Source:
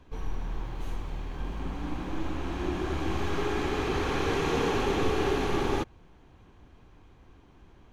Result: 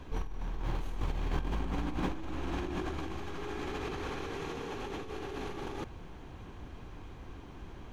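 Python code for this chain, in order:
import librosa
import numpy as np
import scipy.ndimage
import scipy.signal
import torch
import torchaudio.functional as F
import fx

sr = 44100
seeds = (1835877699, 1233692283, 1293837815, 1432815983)

y = fx.over_compress(x, sr, threshold_db=-37.0, ratio=-1.0)
y = y * 10.0 ** (1.0 / 20.0)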